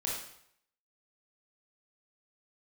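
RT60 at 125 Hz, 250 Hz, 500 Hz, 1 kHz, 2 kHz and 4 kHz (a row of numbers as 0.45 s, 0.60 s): 0.70 s, 0.65 s, 0.70 s, 0.70 s, 0.65 s, 0.65 s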